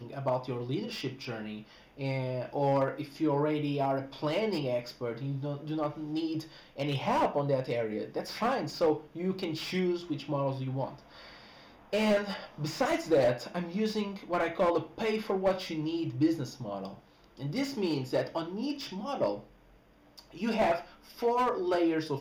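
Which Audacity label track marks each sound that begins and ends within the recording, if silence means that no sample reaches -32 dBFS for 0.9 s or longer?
11.930000	19.350000	sound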